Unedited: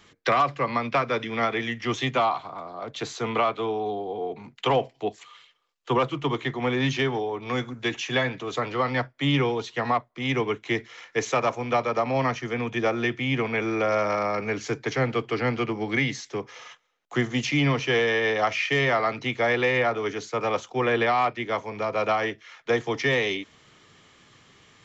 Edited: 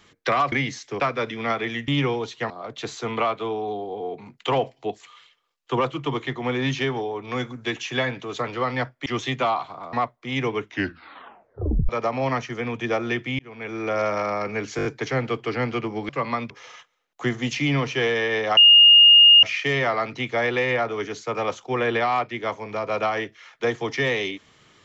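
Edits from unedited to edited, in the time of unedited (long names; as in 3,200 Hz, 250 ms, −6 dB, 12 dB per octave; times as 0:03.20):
0:00.52–0:00.93: swap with 0:15.94–0:16.42
0:01.81–0:02.68: swap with 0:09.24–0:09.86
0:10.56: tape stop 1.26 s
0:13.32–0:13.91: fade in
0:14.70: stutter 0.02 s, 5 plays
0:18.49: insert tone 2,840 Hz −8 dBFS 0.86 s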